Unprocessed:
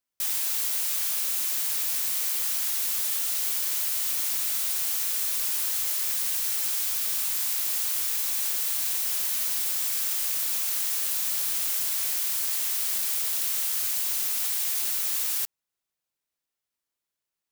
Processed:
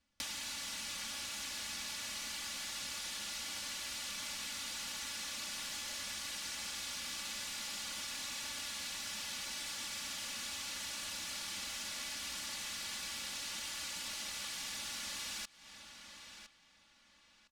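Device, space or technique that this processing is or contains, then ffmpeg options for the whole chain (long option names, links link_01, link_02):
jukebox: -filter_complex "[0:a]lowpass=5000,lowshelf=frequency=250:width_type=q:width=1.5:gain=10.5,aecho=1:1:3.5:0.9,asplit=2[link_01][link_02];[link_02]adelay=1010,lowpass=frequency=4700:poles=1,volume=-22.5dB,asplit=2[link_03][link_04];[link_04]adelay=1010,lowpass=frequency=4700:poles=1,volume=0.28[link_05];[link_01][link_03][link_05]amix=inputs=3:normalize=0,acompressor=threshold=-49dB:ratio=5,volume=7.5dB"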